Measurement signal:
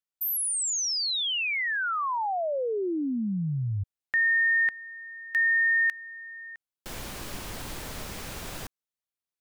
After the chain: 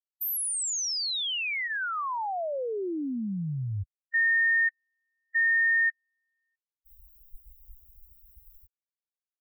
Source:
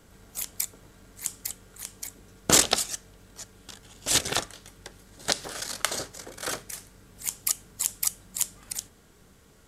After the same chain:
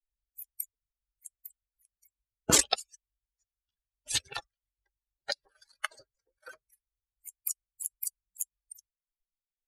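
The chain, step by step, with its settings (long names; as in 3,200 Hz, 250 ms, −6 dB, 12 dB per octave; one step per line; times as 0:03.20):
spectral dynamics exaggerated over time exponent 3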